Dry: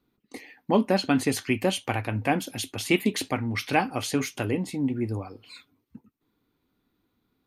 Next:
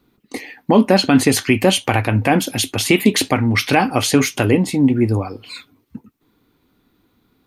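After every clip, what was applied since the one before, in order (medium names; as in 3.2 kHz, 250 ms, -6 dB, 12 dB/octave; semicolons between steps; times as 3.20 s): loudness maximiser +13.5 dB; trim -1 dB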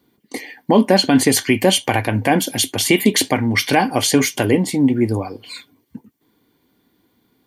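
treble shelf 4.8 kHz +5 dB; comb of notches 1.3 kHz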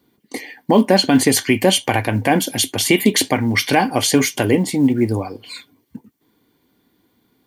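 companded quantiser 8-bit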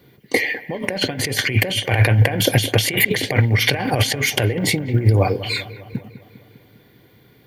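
compressor with a negative ratio -24 dBFS, ratio -1; graphic EQ 125/250/500/1000/2000/8000 Hz +11/-9/+6/-6/+6/-8 dB; feedback echo behind a low-pass 201 ms, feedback 58%, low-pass 2 kHz, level -14.5 dB; trim +3 dB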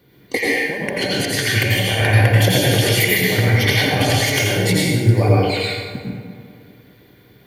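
plate-style reverb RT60 1.3 s, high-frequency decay 0.75×, pre-delay 75 ms, DRR -5 dB; trim -3.5 dB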